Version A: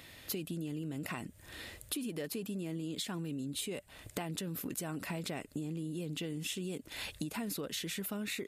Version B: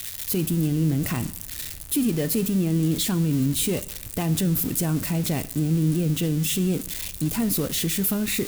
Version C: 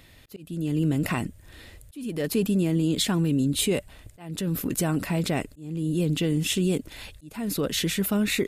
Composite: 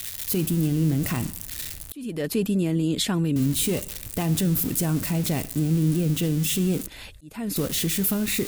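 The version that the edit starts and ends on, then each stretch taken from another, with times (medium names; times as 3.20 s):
B
1.92–3.36 s: from C
6.87–7.56 s: from C
not used: A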